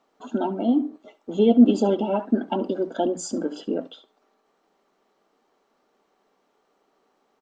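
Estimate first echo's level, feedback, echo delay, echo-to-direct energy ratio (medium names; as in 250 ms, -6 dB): -19.0 dB, 18%, 69 ms, -19.0 dB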